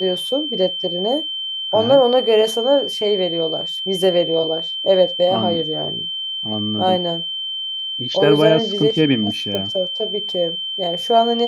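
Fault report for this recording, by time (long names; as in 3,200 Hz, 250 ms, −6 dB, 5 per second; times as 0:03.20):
whistle 3,100 Hz −23 dBFS
0:09.55: click −9 dBFS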